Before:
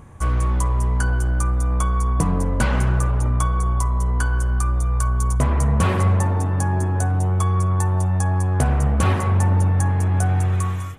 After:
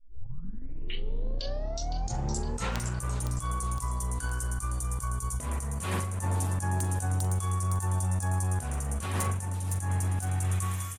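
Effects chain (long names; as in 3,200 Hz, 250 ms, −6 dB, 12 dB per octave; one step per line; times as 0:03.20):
turntable start at the beginning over 2.93 s
first-order pre-emphasis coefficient 0.8
mains-hum notches 50/100/150/200 Hz
compressor whose output falls as the input rises −33 dBFS, ratio −0.5
tuned comb filter 90 Hz, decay 0.98 s, mix 30%
wrap-around overflow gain 25 dB
double-tracking delay 42 ms −12.5 dB
delay with a high-pass on its return 512 ms, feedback 54%, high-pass 5,400 Hz, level −3 dB
level +6 dB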